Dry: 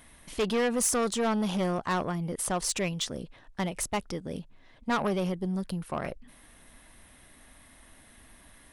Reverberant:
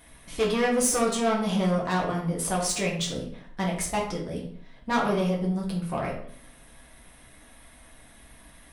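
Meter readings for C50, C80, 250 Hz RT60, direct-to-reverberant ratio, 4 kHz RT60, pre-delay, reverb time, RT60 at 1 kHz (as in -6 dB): 6.0 dB, 9.5 dB, 0.65 s, -3.5 dB, 0.40 s, 4 ms, 0.60 s, 0.60 s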